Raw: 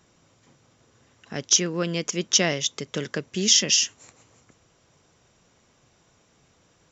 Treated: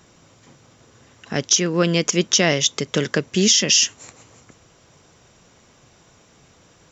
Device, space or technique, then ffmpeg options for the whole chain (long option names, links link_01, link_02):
stacked limiters: -af "alimiter=limit=-8.5dB:level=0:latency=1:release=262,alimiter=limit=-14dB:level=0:latency=1:release=25,volume=8.5dB"